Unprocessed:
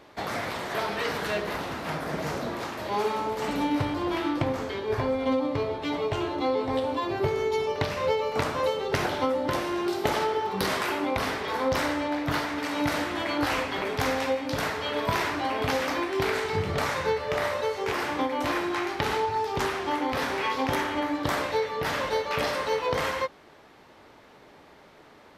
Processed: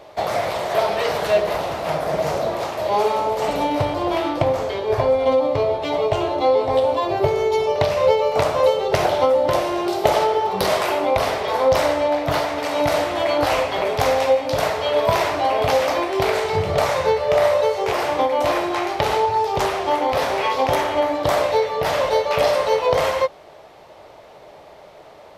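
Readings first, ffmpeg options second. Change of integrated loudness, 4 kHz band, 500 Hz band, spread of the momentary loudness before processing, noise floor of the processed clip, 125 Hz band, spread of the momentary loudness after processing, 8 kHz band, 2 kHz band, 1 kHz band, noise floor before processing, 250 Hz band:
+8.0 dB, +5.5 dB, +10.5 dB, 3 LU, -44 dBFS, +5.0 dB, 5 LU, +6.0 dB, +3.0 dB, +8.5 dB, -53 dBFS, +1.5 dB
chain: -af "equalizer=f=250:t=o:w=0.67:g=-9,equalizer=f=630:t=o:w=0.67:g=10,equalizer=f=1.6k:t=o:w=0.67:g=-5,volume=6dB"

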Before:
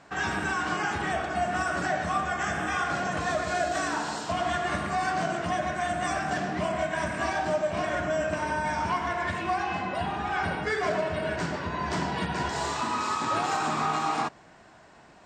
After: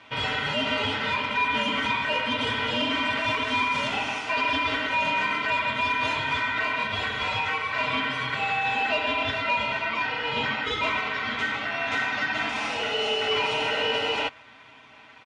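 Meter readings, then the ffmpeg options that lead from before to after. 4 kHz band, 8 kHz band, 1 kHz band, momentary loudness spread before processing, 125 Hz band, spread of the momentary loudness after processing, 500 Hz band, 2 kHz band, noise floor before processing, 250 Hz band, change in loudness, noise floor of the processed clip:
+11.5 dB, -6.5 dB, 0.0 dB, 3 LU, -4.0 dB, 3 LU, -1.0 dB, +5.5 dB, -53 dBFS, -1.0 dB, +3.5 dB, -50 dBFS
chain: -af "aecho=1:1:5.6:0.82,aeval=exprs='0.251*(cos(1*acos(clip(val(0)/0.251,-1,1)))-cos(1*PI/2))+0.0355*(cos(5*acos(clip(val(0)/0.251,-1,1)))-cos(5*PI/2))':c=same,aeval=exprs='val(0)*sin(2*PI*1700*n/s)':c=same,highpass=110,lowpass=4.2k"

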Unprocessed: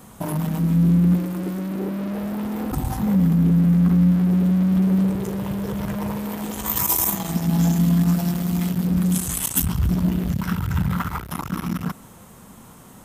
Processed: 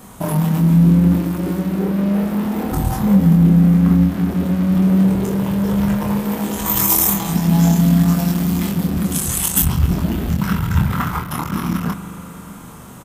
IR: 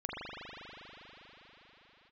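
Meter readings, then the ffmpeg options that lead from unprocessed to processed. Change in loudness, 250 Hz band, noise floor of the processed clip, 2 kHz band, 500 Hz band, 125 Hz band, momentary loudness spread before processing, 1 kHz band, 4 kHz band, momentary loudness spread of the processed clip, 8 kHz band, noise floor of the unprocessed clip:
+4.5 dB, +4.5 dB, -36 dBFS, +6.0 dB, +6.0 dB, +4.5 dB, 11 LU, +6.0 dB, +5.5 dB, 10 LU, +5.5 dB, -45 dBFS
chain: -filter_complex "[0:a]asplit=2[a][b];[b]adelay=25,volume=-3.5dB[c];[a][c]amix=inputs=2:normalize=0,asplit=2[d][e];[1:a]atrim=start_sample=2205[f];[e][f]afir=irnorm=-1:irlink=0,volume=-15dB[g];[d][g]amix=inputs=2:normalize=0,volume=3dB"

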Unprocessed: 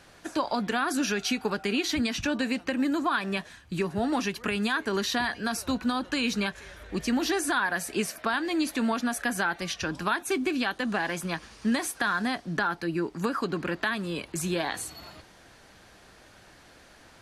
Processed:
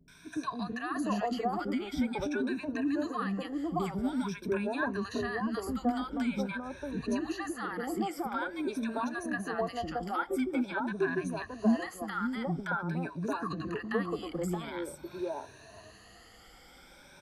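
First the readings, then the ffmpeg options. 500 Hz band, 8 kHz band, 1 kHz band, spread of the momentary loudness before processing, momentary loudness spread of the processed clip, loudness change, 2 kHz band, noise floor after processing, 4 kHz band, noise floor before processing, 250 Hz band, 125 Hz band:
-3.0 dB, -14.0 dB, -4.5 dB, 6 LU, 6 LU, -5.0 dB, -8.5 dB, -56 dBFS, -13.5 dB, -54 dBFS, -3.0 dB, -2.0 dB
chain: -filter_complex "[0:a]afftfilt=real='re*pow(10,17/40*sin(2*PI*(1.6*log(max(b,1)*sr/1024/100)/log(2)-(0.47)*(pts-256)/sr)))':imag='im*pow(10,17/40*sin(2*PI*(1.6*log(max(b,1)*sr/1024/100)/log(2)-(0.47)*(pts-256)/sr)))':win_size=1024:overlap=0.75,acrossover=split=240|1400[a][b][c];[c]acompressor=threshold=-46dB:ratio=4[d];[a][b][d]amix=inputs=3:normalize=0,acrossover=split=330|1000[e][f][g];[g]adelay=80[h];[f]adelay=700[i];[e][i][h]amix=inputs=3:normalize=0,volume=-3.5dB"

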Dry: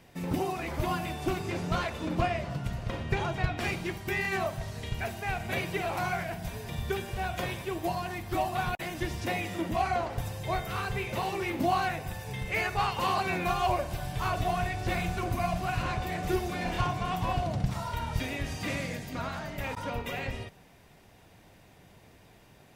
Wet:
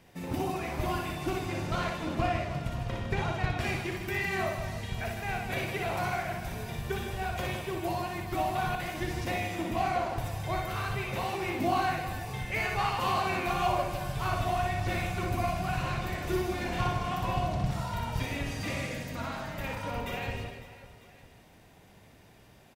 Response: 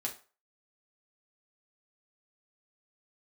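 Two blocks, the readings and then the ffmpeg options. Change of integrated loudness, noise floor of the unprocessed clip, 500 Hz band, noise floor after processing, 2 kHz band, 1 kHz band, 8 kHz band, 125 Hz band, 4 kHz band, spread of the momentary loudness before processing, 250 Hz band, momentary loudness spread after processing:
0.0 dB, -57 dBFS, -0.5 dB, -56 dBFS, -0.5 dB, 0.0 dB, -0.5 dB, 0.0 dB, -0.5 dB, 7 LU, -0.5 dB, 7 LU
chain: -af "aecho=1:1:60|156|309.6|555.4|948.6:0.631|0.398|0.251|0.158|0.1,volume=-2.5dB"

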